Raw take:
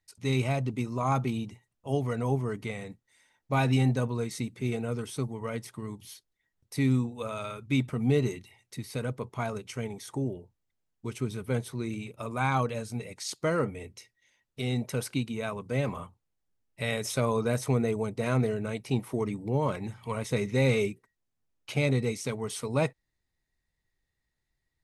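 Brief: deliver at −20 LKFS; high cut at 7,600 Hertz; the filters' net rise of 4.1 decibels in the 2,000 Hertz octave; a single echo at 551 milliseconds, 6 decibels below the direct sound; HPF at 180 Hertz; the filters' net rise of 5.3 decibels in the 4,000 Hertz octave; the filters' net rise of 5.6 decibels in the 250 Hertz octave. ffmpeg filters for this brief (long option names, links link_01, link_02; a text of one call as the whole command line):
ffmpeg -i in.wav -af "highpass=180,lowpass=7600,equalizer=frequency=250:width_type=o:gain=7.5,equalizer=frequency=2000:width_type=o:gain=3.5,equalizer=frequency=4000:width_type=o:gain=5.5,aecho=1:1:551:0.501,volume=8dB" out.wav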